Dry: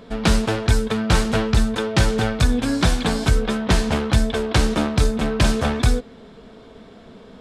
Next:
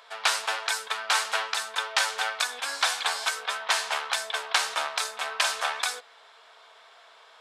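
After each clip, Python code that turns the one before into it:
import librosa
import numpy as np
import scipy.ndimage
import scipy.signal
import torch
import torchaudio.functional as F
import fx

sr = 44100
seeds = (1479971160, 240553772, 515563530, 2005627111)

y = scipy.signal.sosfilt(scipy.signal.butter(4, 820.0, 'highpass', fs=sr, output='sos'), x)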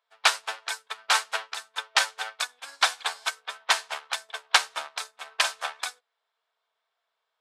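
y = fx.upward_expand(x, sr, threshold_db=-42.0, expansion=2.5)
y = y * 10.0 ** (6.0 / 20.0)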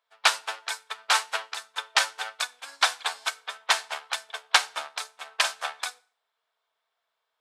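y = fx.rev_fdn(x, sr, rt60_s=0.46, lf_ratio=1.35, hf_ratio=0.9, size_ms=20.0, drr_db=17.5)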